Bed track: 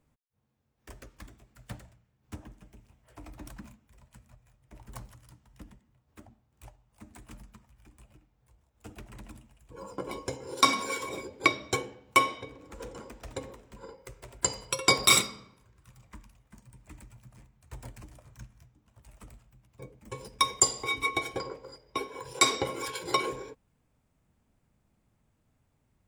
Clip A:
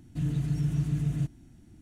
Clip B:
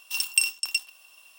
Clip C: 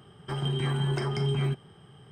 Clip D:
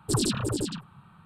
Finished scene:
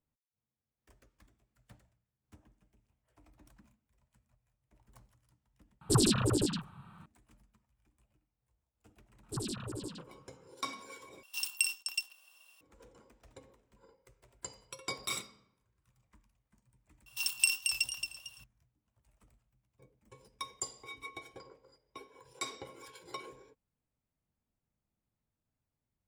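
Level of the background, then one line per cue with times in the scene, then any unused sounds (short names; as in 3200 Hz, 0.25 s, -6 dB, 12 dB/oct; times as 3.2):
bed track -16.5 dB
5.81 add D -0.5 dB
9.23 add D -12.5 dB
11.23 replace with B -8.5 dB
17.06 add B -6 dB + warbling echo 0.226 s, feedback 32%, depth 63 cents, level -6 dB
not used: A, C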